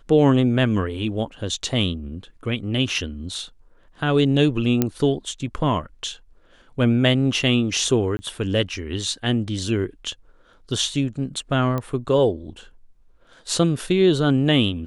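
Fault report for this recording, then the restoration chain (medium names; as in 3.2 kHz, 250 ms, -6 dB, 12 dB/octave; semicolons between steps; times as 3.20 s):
4.82 s: pop -5 dBFS
8.17–8.19 s: dropout 20 ms
11.78 s: pop -14 dBFS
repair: de-click; interpolate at 8.17 s, 20 ms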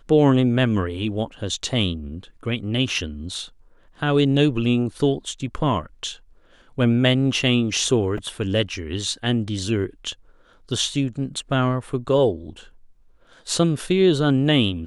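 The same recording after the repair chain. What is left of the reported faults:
11.78 s: pop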